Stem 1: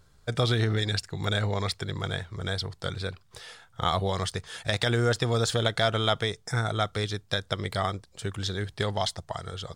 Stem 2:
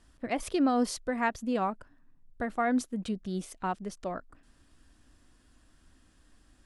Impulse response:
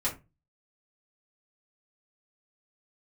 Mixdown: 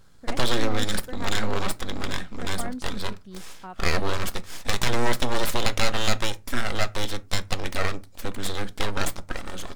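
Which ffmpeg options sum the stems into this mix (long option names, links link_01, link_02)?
-filter_complex "[0:a]aeval=exprs='abs(val(0))':channel_layout=same,volume=3dB,asplit=2[link_01][link_02];[link_02]volume=-16.5dB[link_03];[1:a]volume=-8.5dB[link_04];[2:a]atrim=start_sample=2205[link_05];[link_03][link_05]afir=irnorm=-1:irlink=0[link_06];[link_01][link_04][link_06]amix=inputs=3:normalize=0"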